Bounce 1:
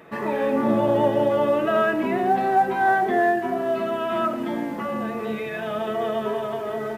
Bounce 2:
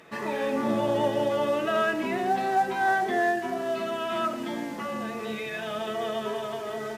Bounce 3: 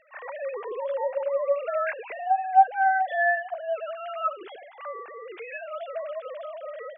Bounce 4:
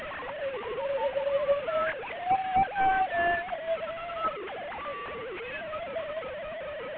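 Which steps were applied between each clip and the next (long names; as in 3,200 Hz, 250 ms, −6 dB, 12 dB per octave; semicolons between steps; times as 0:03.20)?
parametric band 6,000 Hz +12.5 dB 2.3 octaves; level −6 dB
three sine waves on the formant tracks
linear delta modulator 16 kbit/s, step −29.5 dBFS; level −1.5 dB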